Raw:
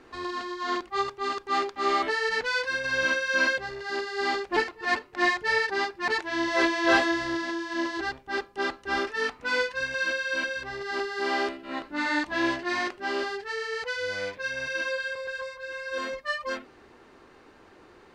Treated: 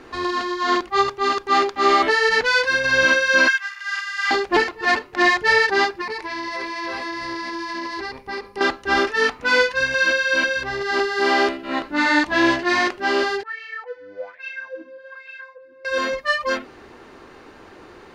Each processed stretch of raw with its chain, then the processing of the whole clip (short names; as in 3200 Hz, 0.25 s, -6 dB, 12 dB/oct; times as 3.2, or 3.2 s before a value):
3.48–4.31 steep high-pass 1200 Hz + bell 4200 Hz -10.5 dB 0.29 oct
6.01–8.61 ripple EQ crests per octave 0.89, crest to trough 9 dB + compressor 12:1, threshold -34 dBFS
13.43–15.85 wah 1.2 Hz 270–2600 Hz, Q 6.4 + band-limited delay 0.137 s, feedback 56%, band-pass 1100 Hz, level -24 dB
whole clip: notch 8000 Hz, Q 12; maximiser +15.5 dB; gain -6 dB